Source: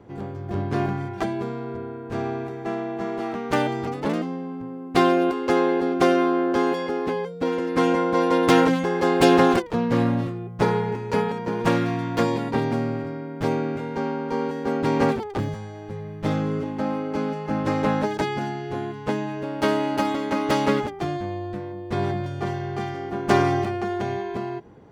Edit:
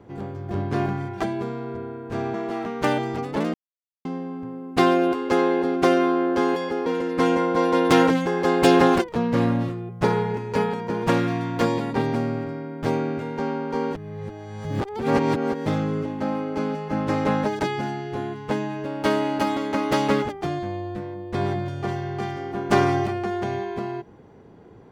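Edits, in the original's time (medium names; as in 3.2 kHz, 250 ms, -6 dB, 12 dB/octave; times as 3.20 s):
2.34–3.03 s: delete
4.23 s: insert silence 0.51 s
7.04–7.44 s: delete
14.53–16.24 s: reverse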